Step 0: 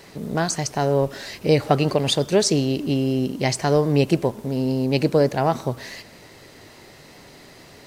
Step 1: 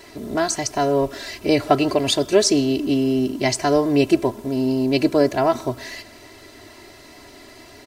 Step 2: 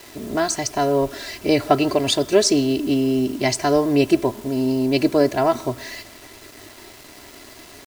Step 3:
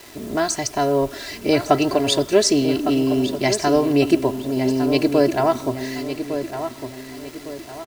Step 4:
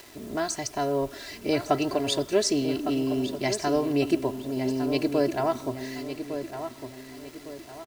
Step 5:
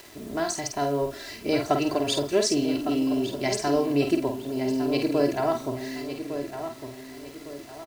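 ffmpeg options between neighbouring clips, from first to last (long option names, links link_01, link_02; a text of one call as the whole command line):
ffmpeg -i in.wav -af "aecho=1:1:3:0.78" out.wav
ffmpeg -i in.wav -af "acrusher=bits=6:mix=0:aa=0.000001" out.wav
ffmpeg -i in.wav -filter_complex "[0:a]asplit=2[link_01][link_02];[link_02]adelay=1157,lowpass=frequency=3600:poles=1,volume=-9dB,asplit=2[link_03][link_04];[link_04]adelay=1157,lowpass=frequency=3600:poles=1,volume=0.39,asplit=2[link_05][link_06];[link_06]adelay=1157,lowpass=frequency=3600:poles=1,volume=0.39,asplit=2[link_07][link_08];[link_08]adelay=1157,lowpass=frequency=3600:poles=1,volume=0.39[link_09];[link_01][link_03][link_05][link_07][link_09]amix=inputs=5:normalize=0" out.wav
ffmpeg -i in.wav -af "acompressor=mode=upward:threshold=-37dB:ratio=2.5,volume=-7.5dB" out.wav
ffmpeg -i in.wav -filter_complex "[0:a]asplit=2[link_01][link_02];[link_02]adelay=49,volume=-6dB[link_03];[link_01][link_03]amix=inputs=2:normalize=0" out.wav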